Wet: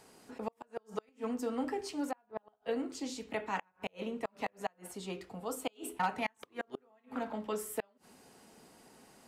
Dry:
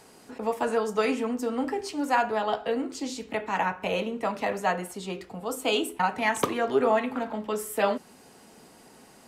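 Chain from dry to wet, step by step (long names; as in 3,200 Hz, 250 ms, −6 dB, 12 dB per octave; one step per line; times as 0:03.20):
0:05.71–0:06.13: gain into a clipping stage and back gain 17 dB
gate with flip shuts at −16 dBFS, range −37 dB
0:02.11–0:02.62: head-to-tape spacing loss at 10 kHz 30 dB
level −6.5 dB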